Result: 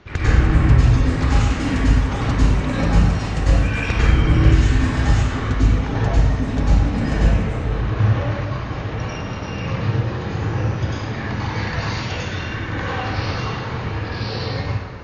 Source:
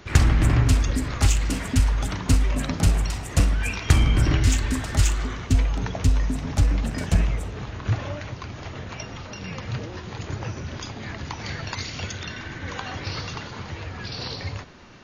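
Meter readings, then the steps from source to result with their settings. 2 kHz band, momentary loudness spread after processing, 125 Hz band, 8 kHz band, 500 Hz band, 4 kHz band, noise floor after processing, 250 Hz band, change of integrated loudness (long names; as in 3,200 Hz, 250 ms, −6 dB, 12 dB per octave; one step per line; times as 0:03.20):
+6.0 dB, 10 LU, +5.5 dB, −6.5 dB, +8.0 dB, +1.5 dB, −28 dBFS, +6.5 dB, +5.0 dB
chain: downward compressor, threshold −19 dBFS, peak gain reduction 9 dB
high-frequency loss of the air 140 metres
dense smooth reverb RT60 1.5 s, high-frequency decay 0.6×, pre-delay 85 ms, DRR −10 dB
level −1.5 dB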